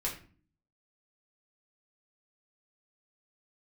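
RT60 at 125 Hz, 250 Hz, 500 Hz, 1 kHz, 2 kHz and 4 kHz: 0.70, 0.70, 0.45, 0.40, 0.40, 0.30 seconds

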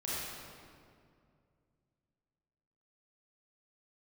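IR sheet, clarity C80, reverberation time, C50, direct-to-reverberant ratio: −2.0 dB, 2.3 s, −5.0 dB, −9.0 dB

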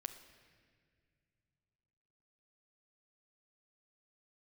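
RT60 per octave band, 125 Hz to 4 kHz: 3.6, 3.1, 2.4, 1.7, 2.2, 1.6 seconds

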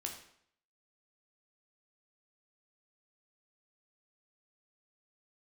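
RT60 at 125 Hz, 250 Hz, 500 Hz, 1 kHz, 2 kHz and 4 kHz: 0.65, 0.65, 0.65, 0.65, 0.65, 0.55 seconds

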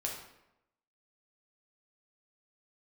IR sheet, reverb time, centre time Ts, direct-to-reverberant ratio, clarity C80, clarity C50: 0.90 s, 38 ms, −1.5 dB, 7.0 dB, 4.0 dB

